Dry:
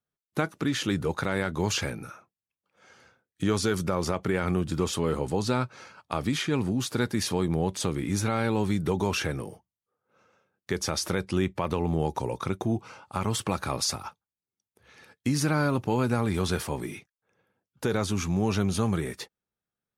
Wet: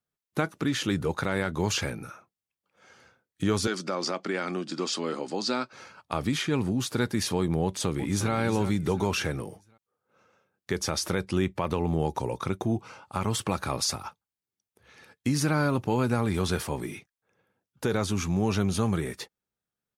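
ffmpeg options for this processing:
ffmpeg -i in.wav -filter_complex "[0:a]asettb=1/sr,asplit=3[link_01][link_02][link_03];[link_01]atrim=end=3.674[link_04];[link_02]atrim=start=3.67:end=5.73,asetpts=PTS-STARTPTS,afade=type=in:duration=0.004:curve=qsin,afade=type=out:start_time=2.056:duration=0.004:curve=qsin,highpass=frequency=230:width=0.5412,highpass=frequency=230:width=1.3066,equalizer=frequency=440:width_type=q:width=4:gain=-6,equalizer=frequency=940:width_type=q:width=4:gain=-4,equalizer=frequency=4800:width_type=q:width=4:gain=9,lowpass=frequency=8000:width=0.5412,lowpass=frequency=8000:width=1.3066[link_05];[link_03]atrim=start=5.726[link_06];[link_04][link_05]acrossfade=duration=0.004:curve1=hsin:curve2=qsin[link_07];[link_07][link_06]acrossfade=duration=0.004:curve1=qsin:curve2=hsin,asplit=2[link_08][link_09];[link_09]afade=type=in:start_time=7.63:duration=0.01,afade=type=out:start_time=8.33:duration=0.01,aecho=0:1:360|720|1080|1440:0.298538|0.119415|0.0477661|0.0191064[link_10];[link_08][link_10]amix=inputs=2:normalize=0" out.wav

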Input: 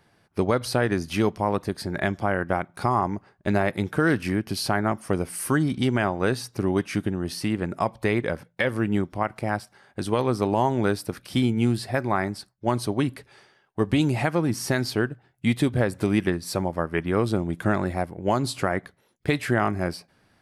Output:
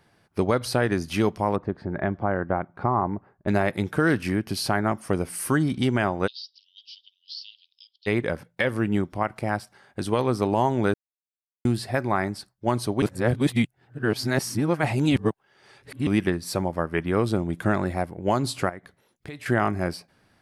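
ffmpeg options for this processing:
ffmpeg -i in.wav -filter_complex "[0:a]asplit=3[link_01][link_02][link_03];[link_01]afade=type=out:start_time=1.55:duration=0.02[link_04];[link_02]lowpass=1400,afade=type=in:start_time=1.55:duration=0.02,afade=type=out:start_time=3.47:duration=0.02[link_05];[link_03]afade=type=in:start_time=3.47:duration=0.02[link_06];[link_04][link_05][link_06]amix=inputs=3:normalize=0,asplit=3[link_07][link_08][link_09];[link_07]afade=type=out:start_time=6.26:duration=0.02[link_10];[link_08]asuperpass=centerf=4000:order=12:qfactor=1.7,afade=type=in:start_time=6.26:duration=0.02,afade=type=out:start_time=8.06:duration=0.02[link_11];[link_09]afade=type=in:start_time=8.06:duration=0.02[link_12];[link_10][link_11][link_12]amix=inputs=3:normalize=0,asettb=1/sr,asplit=3[link_13][link_14][link_15];[link_13]atrim=end=18.694[link_16];[link_14]atrim=start=18.69:end=19.46,asetpts=PTS-STARTPTS,afade=type=in:duration=0.004:curve=qsin,afade=type=out:start_time=0.766:duration=0.004:curve=qsin,acompressor=threshold=-41dB:ratio=2.5:attack=3.2:release=140:knee=1:detection=peak[link_17];[link_15]atrim=start=19.456[link_18];[link_16][link_17]acrossfade=duration=0.004:curve1=hsin:curve2=qsin[link_19];[link_19][link_18]acrossfade=duration=0.004:curve1=qsin:curve2=hsin,asplit=5[link_20][link_21][link_22][link_23][link_24];[link_20]atrim=end=10.94,asetpts=PTS-STARTPTS,afade=type=out:start_time=10.936:duration=0.004:curve=hsin[link_25];[link_21]atrim=start=10.94:end=11.65,asetpts=PTS-STARTPTS,volume=0[link_26];[link_22]atrim=start=11.65:end=13.022,asetpts=PTS-STARTPTS,afade=type=in:duration=0.004:curve=hsin[link_27];[link_23]atrim=start=13.018:end=16.072,asetpts=PTS-STARTPTS,areverse[link_28];[link_24]atrim=start=16.068[link_29];[link_25][link_26][link_27]concat=n=3:v=0:a=1[link_30];[link_30][link_28]acrossfade=duration=0.004:curve1=hsin:curve2=hsin[link_31];[link_31][link_29]acrossfade=duration=0.004:curve1=hsin:curve2=hsin" out.wav

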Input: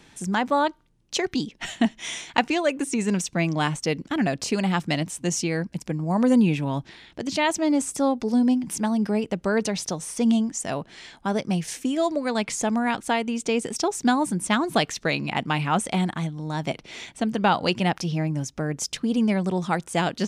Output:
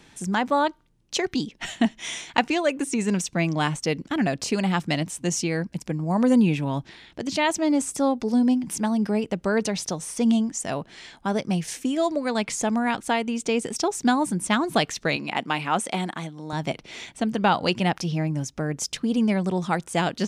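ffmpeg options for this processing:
ffmpeg -i in.wav -filter_complex "[0:a]asettb=1/sr,asplit=3[link_01][link_02][link_03];[link_01]atrim=end=15.164[link_04];[link_02]atrim=start=15.16:end=16.53,asetpts=PTS-STARTPTS,afade=type=in:duration=0.004:curve=qsin,afade=type=out:start_time=1.366:duration=0.004:curve=qsin,highpass=240[link_05];[link_03]atrim=start=16.526[link_06];[link_04][link_05]acrossfade=duration=0.004:curve1=hsin:curve2=qsin[link_07];[link_07][link_06]acrossfade=duration=0.004:curve1=qsin:curve2=hsin" out.wav

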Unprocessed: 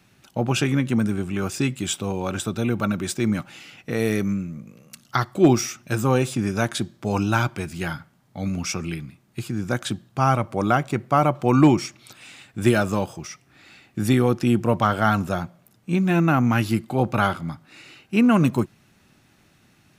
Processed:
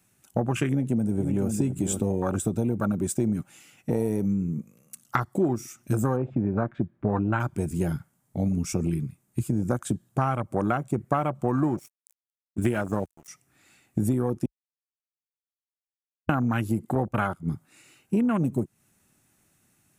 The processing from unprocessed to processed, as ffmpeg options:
ffmpeg -i in.wav -filter_complex "[0:a]asplit=2[link_01][link_02];[link_02]afade=type=in:start_time=0.69:duration=0.01,afade=type=out:start_time=1.49:duration=0.01,aecho=0:1:500|1000:0.334965|0.0502448[link_03];[link_01][link_03]amix=inputs=2:normalize=0,asplit=3[link_04][link_05][link_06];[link_04]afade=type=out:start_time=6.15:duration=0.02[link_07];[link_05]lowpass=frequency=2300:width=0.5412,lowpass=frequency=2300:width=1.3066,afade=type=in:start_time=6.15:duration=0.02,afade=type=out:start_time=7.39:duration=0.02[link_08];[link_06]afade=type=in:start_time=7.39:duration=0.02[link_09];[link_07][link_08][link_09]amix=inputs=3:normalize=0,asettb=1/sr,asplit=3[link_10][link_11][link_12];[link_10]atrim=end=11.564[link_13];[link_11]atrim=start=11.56:end=13.28,asetpts=PTS-STARTPTS,afade=type=in:duration=0.004:curve=qsin,afade=type=out:start_time=1.716:duration=0.004:curve=qsin,aeval=exprs='sgn(val(0))*max(abs(val(0))-0.0224,0)':channel_layout=same[link_14];[link_12]atrim=start=13.276[link_15];[link_13][link_14]acrossfade=duration=0.004:curve1=hsin:curve2=qsin[link_16];[link_16][link_15]acrossfade=duration=0.004:curve1=qsin:curve2=hsin,asettb=1/sr,asplit=3[link_17][link_18][link_19];[link_17]atrim=end=16.954[link_20];[link_18]atrim=start=16.95:end=17.48,asetpts=PTS-STARTPTS,afade=type=in:duration=0.004:curve=qsin,afade=type=out:start_time=0.526:duration=0.004:curve=qsin,agate=range=-9dB:threshold=-28dB:ratio=16:release=100:detection=peak[link_21];[link_19]atrim=start=17.476[link_22];[link_20][link_21]acrossfade=duration=0.004:curve1=hsin:curve2=qsin[link_23];[link_23][link_22]acrossfade=duration=0.004:curve1=qsin:curve2=hsin,asplit=3[link_24][link_25][link_26];[link_24]atrim=end=14.46,asetpts=PTS-STARTPTS,afade=type=out:start_time=14.456:duration=0.004:curve=hsin[link_27];[link_25]atrim=start=14.46:end=16.29,asetpts=PTS-STARTPTS,volume=0[link_28];[link_26]atrim=start=16.29,asetpts=PTS-STARTPTS,afade=type=in:duration=0.004:curve=hsin[link_29];[link_27][link_28][link_29]concat=n=3:v=0:a=1,afwtdn=0.0501,highshelf=frequency=6100:width_type=q:width=1.5:gain=11,acompressor=threshold=-27dB:ratio=10,volume=6dB" out.wav

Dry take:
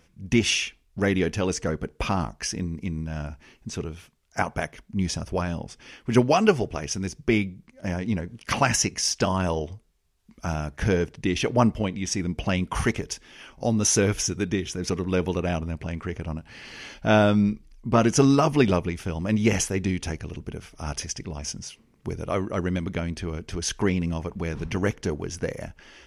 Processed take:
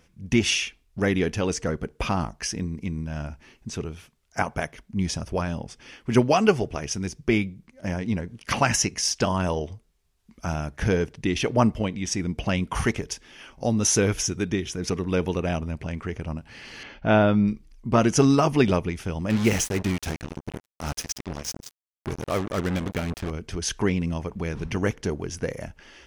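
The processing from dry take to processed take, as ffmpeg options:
ffmpeg -i in.wav -filter_complex "[0:a]asettb=1/sr,asplit=3[link_01][link_02][link_03];[link_01]atrim=end=16.834[link_04];[link_02]atrim=start=16.83:end=17.48,asetpts=PTS-STARTPTS,afade=type=in:duration=0.004:curve=qsin,afade=type=out:start_time=0.646:duration=0.004:curve=qsin,lowpass=2900[link_05];[link_03]atrim=start=17.476[link_06];[link_04][link_05]acrossfade=duration=0.004:curve1=hsin:curve2=qsin[link_07];[link_07][link_06]acrossfade=duration=0.004:curve1=qsin:curve2=hsin,asettb=1/sr,asplit=3[link_08][link_09][link_10];[link_08]atrim=end=19.304[link_11];[link_09]atrim=start=19.3:end=23.31,asetpts=PTS-STARTPTS,afade=type=in:duration=0.004:curve=qsin,afade=type=out:start_time=4.006:duration=0.004:curve=qsin,acrusher=bits=4:mix=0:aa=0.5[link_12];[link_10]atrim=start=23.306[link_13];[link_11][link_12]acrossfade=duration=0.004:curve1=hsin:curve2=qsin[link_14];[link_14][link_13]acrossfade=duration=0.004:curve1=qsin:curve2=hsin" out.wav

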